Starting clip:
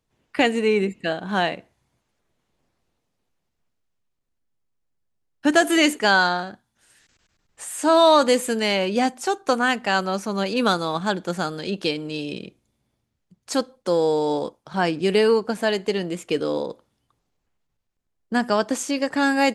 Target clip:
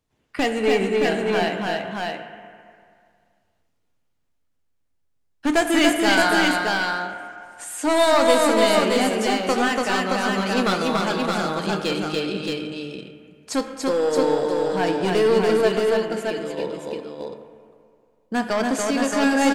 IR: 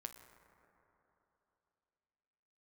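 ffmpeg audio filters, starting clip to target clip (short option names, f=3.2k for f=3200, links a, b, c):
-filter_complex "[0:a]asettb=1/sr,asplit=3[a][b][c];[a]atrim=end=15.684[d];[b]atrim=start=15.68:end=16.58,asetpts=PTS-STARTPTS,afade=t=in:d=0.004:c=qsin,afade=t=out:st=0.896:d=0.004:c=qsin,acompressor=threshold=-31dB:ratio=4[e];[c]atrim=start=16.576[f];[d][e]acrossfade=d=0.004:c1=hsin:c2=qsin[g];[g][f]acrossfade=d=0.004:c1=qsin:c2=hsin,aeval=exprs='clip(val(0),-1,0.133)':c=same,aecho=1:1:287|622:0.708|0.668[h];[1:a]atrim=start_sample=2205,asetrate=66150,aresample=44100[i];[h][i]afir=irnorm=-1:irlink=0,volume=8dB"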